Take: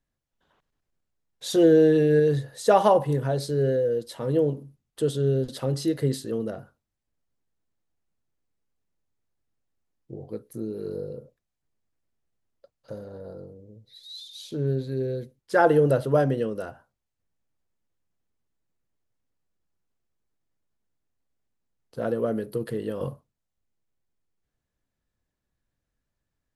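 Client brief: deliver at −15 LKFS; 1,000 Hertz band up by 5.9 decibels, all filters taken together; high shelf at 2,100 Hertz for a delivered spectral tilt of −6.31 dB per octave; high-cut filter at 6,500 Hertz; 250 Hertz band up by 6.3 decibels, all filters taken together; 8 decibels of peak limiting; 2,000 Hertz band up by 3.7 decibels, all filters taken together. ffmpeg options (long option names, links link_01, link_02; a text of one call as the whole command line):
ffmpeg -i in.wav -af "lowpass=6500,equalizer=frequency=250:width_type=o:gain=8.5,equalizer=frequency=1000:width_type=o:gain=8,equalizer=frequency=2000:width_type=o:gain=5.5,highshelf=frequency=2100:gain=-8.5,volume=7dB,alimiter=limit=-2dB:level=0:latency=1" out.wav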